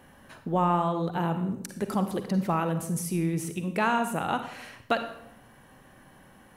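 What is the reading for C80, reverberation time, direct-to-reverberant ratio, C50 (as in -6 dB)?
11.5 dB, 0.75 s, 8.0 dB, 9.0 dB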